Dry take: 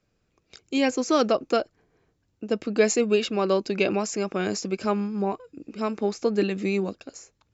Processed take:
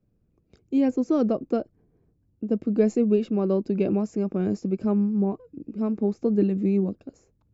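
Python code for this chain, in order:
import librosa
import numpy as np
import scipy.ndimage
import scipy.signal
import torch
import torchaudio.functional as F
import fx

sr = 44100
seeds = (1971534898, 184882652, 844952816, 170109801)

y = fx.curve_eq(x, sr, hz=(220.0, 1400.0, 3700.0), db=(0, -19, -25))
y = F.gain(torch.from_numpy(y), 5.5).numpy()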